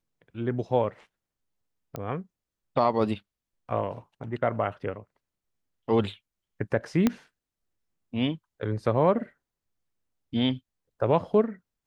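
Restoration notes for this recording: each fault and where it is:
1.96 pop -19 dBFS
7.07 pop -9 dBFS

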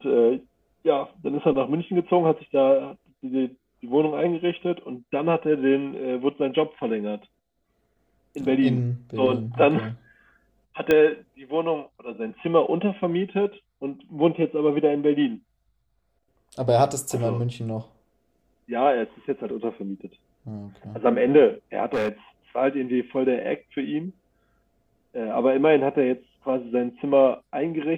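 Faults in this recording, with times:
10.91 pop -8 dBFS
21.93–22.09 clipped -20.5 dBFS

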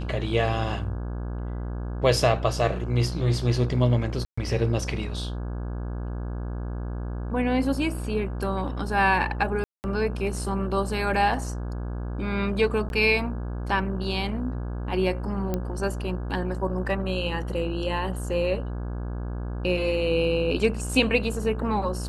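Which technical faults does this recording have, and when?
buzz 60 Hz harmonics 28 -31 dBFS
4.25–4.38 gap 0.125 s
9.64–9.84 gap 0.199 s
12.89–12.9 gap 11 ms
15.54 pop -14 dBFS

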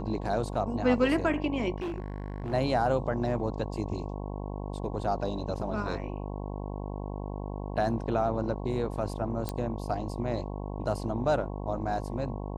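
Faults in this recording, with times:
buzz 50 Hz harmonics 22 -36 dBFS
1.78–2.54 clipped -30.5 dBFS
9.49 pop -17 dBFS

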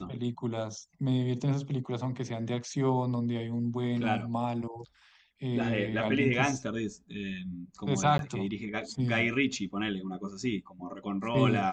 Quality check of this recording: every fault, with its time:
8.18–8.19 gap 12 ms

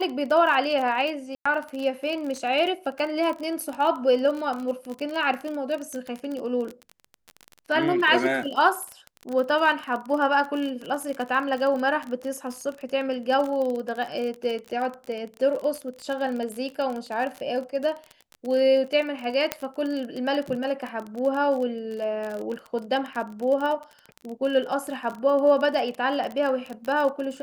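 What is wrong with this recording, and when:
crackle 32/s -29 dBFS
1.35–1.46 gap 0.105 s
19.52 pop -7 dBFS

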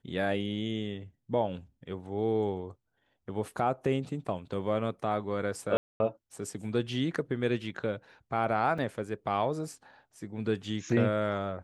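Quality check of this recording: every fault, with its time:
5.77–6 gap 0.23 s
8.78 gap 4.2 ms

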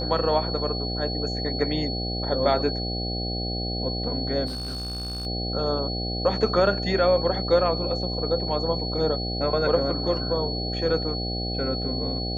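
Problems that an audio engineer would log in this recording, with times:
buzz 60 Hz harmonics 13 -30 dBFS
tone 4400 Hz -31 dBFS
4.46–5.27 clipped -28.5 dBFS

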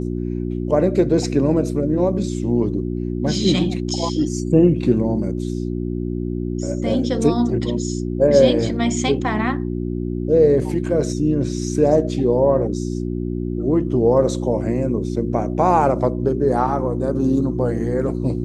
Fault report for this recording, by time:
hum 60 Hz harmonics 6 -24 dBFS

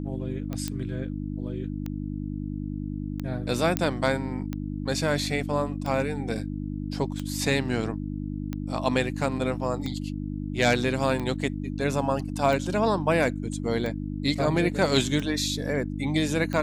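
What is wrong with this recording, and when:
hum 50 Hz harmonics 6 -32 dBFS
tick 45 rpm -19 dBFS
0.68 pop -15 dBFS
3.77 pop -7 dBFS

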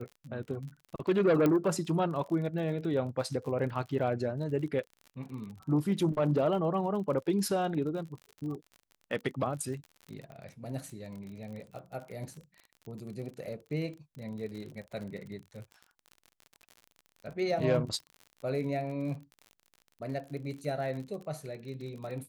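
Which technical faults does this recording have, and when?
crackle 44/s -40 dBFS
1.46 pop -15 dBFS
10.32 pop -35 dBFS

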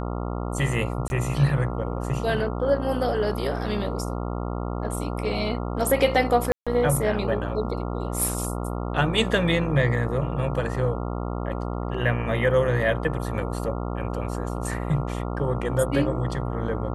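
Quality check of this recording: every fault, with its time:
buzz 60 Hz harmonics 23 -29 dBFS
1.08–1.1 gap 21 ms
6.52–6.67 gap 0.146 s

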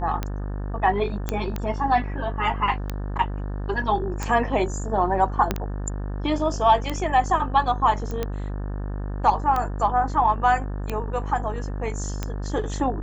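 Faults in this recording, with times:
buzz 50 Hz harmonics 36 -29 dBFS
tick 45 rpm -13 dBFS
1.29 pop -11 dBFS
5.51 pop -8 dBFS
8.11 pop -19 dBFS

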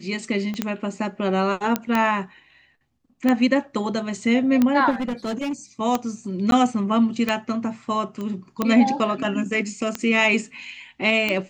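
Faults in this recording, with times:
tick 45 rpm -8 dBFS
0.54 pop -18 dBFS
1.76 pop -7 dBFS
4.9–5.53 clipped -22.5 dBFS
6.51–6.52 gap 12 ms
8.21 pop -20 dBFS

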